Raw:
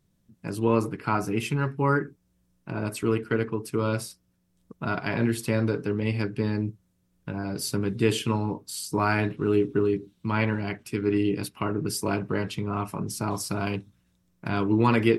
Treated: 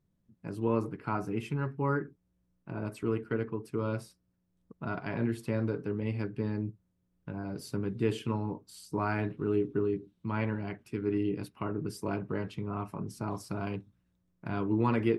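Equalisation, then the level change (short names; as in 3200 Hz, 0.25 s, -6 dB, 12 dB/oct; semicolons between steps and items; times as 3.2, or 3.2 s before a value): high shelf 2600 Hz -11.5 dB; -6.0 dB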